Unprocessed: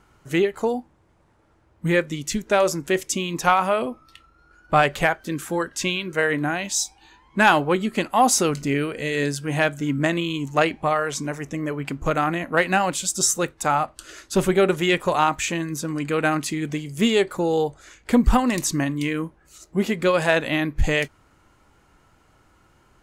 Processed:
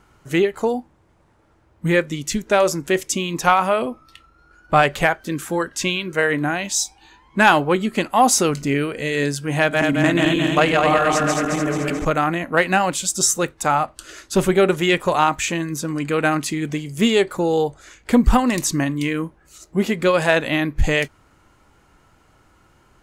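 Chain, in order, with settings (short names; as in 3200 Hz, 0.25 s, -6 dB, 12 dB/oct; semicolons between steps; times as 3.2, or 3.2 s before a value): 9.6–12.05 regenerating reverse delay 0.109 s, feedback 76%, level -2 dB; gain +2.5 dB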